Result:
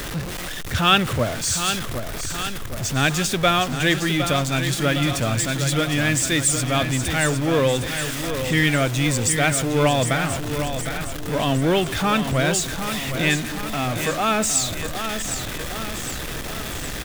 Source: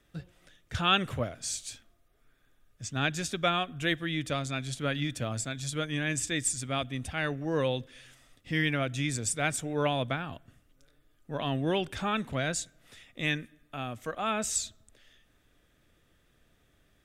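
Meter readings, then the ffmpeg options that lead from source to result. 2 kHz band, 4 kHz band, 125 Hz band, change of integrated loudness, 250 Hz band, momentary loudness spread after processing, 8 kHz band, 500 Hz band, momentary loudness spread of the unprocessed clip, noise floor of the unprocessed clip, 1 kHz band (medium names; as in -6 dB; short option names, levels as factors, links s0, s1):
+10.5 dB, +11.0 dB, +12.0 dB, +9.5 dB, +11.0 dB, 10 LU, +12.0 dB, +10.5 dB, 12 LU, -68 dBFS, +10.5 dB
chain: -filter_complex "[0:a]aeval=exprs='val(0)+0.5*0.0251*sgn(val(0))':c=same,asplit=2[s0][s1];[s1]aecho=0:1:761|1522|2283|3044|3805|4566|5327:0.376|0.21|0.118|0.066|0.037|0.0207|0.0116[s2];[s0][s2]amix=inputs=2:normalize=0,volume=2.37"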